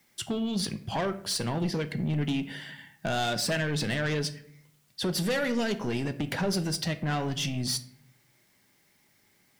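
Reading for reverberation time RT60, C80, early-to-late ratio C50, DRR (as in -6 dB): 0.65 s, 18.0 dB, 15.0 dB, 9.0 dB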